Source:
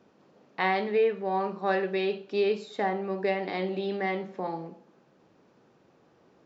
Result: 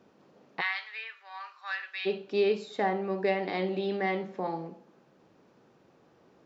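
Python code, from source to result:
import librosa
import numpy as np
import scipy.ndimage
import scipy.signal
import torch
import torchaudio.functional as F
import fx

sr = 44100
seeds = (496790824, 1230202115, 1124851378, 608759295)

y = fx.highpass(x, sr, hz=1300.0, slope=24, at=(0.6, 2.05), fade=0.02)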